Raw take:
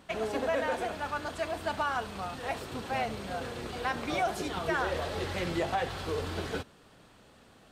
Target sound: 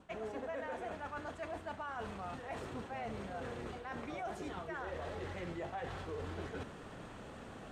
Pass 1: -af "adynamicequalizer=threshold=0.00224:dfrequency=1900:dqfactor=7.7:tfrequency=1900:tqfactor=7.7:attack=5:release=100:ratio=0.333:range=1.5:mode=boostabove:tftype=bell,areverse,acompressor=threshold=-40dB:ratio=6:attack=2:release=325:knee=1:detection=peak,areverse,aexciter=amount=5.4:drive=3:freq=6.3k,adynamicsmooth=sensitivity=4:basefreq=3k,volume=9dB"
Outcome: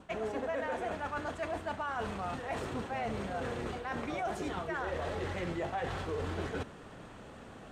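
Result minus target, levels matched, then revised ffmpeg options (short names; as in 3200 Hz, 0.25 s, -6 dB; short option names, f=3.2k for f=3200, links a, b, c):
compressor: peak gain reduction -6 dB
-af "adynamicequalizer=threshold=0.00224:dfrequency=1900:dqfactor=7.7:tfrequency=1900:tqfactor=7.7:attack=5:release=100:ratio=0.333:range=1.5:mode=boostabove:tftype=bell,areverse,acompressor=threshold=-47.5dB:ratio=6:attack=2:release=325:knee=1:detection=peak,areverse,aexciter=amount=5.4:drive=3:freq=6.3k,adynamicsmooth=sensitivity=4:basefreq=3k,volume=9dB"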